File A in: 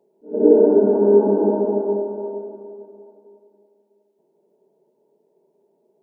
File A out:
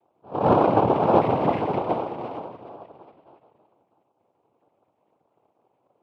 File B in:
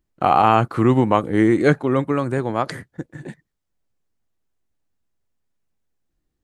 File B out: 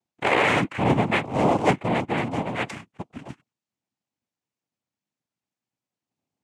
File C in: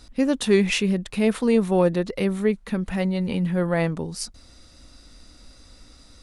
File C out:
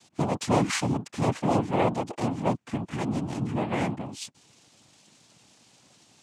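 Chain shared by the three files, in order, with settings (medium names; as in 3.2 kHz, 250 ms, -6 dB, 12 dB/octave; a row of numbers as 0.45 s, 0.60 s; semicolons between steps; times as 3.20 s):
noise-vocoded speech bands 4; dynamic bell 2.1 kHz, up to +5 dB, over -42 dBFS, Q 7.6; trim -5 dB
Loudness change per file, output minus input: -5.0 LU, -4.5 LU, -5.0 LU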